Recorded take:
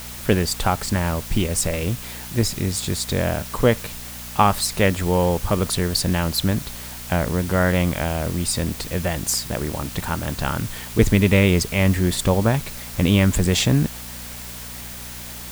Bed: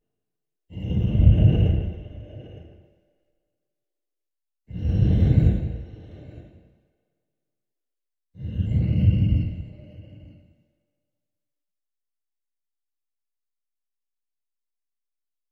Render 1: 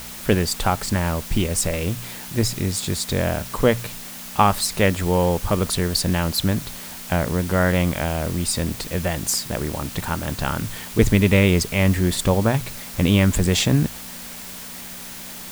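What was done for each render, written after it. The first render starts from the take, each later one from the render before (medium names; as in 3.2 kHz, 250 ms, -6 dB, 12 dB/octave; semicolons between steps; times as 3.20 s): de-hum 60 Hz, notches 2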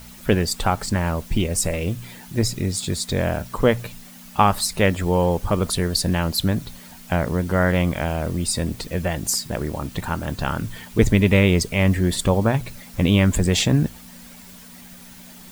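noise reduction 10 dB, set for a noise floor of -36 dBFS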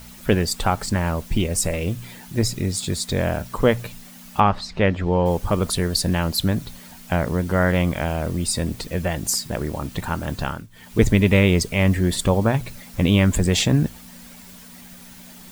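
4.40–5.26 s: distance through air 190 m; 10.41–10.97 s: dip -18.5 dB, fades 0.26 s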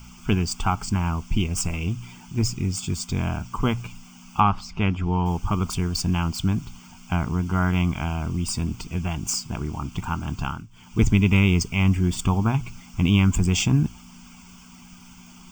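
median filter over 3 samples; static phaser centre 2.7 kHz, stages 8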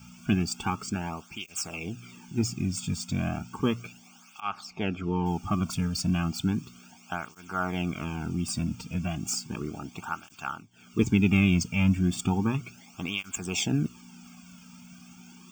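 comb of notches 1 kHz; cancelling through-zero flanger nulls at 0.34 Hz, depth 2.8 ms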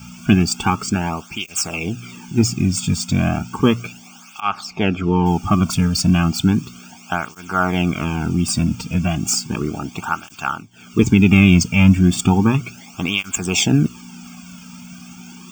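trim +11.5 dB; peak limiter -1 dBFS, peak gain reduction 3 dB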